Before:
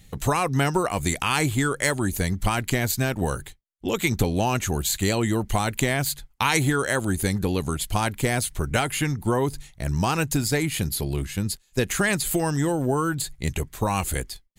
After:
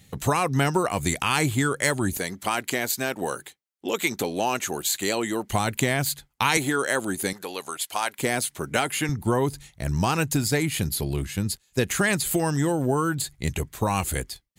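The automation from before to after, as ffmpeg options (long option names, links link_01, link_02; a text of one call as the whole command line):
ffmpeg -i in.wav -af "asetnsamples=nb_out_samples=441:pad=0,asendcmd='2.17 highpass f 300;5.5 highpass f 86;6.57 highpass f 240;7.33 highpass f 630;8.19 highpass f 200;9.09 highpass f 57',highpass=80" out.wav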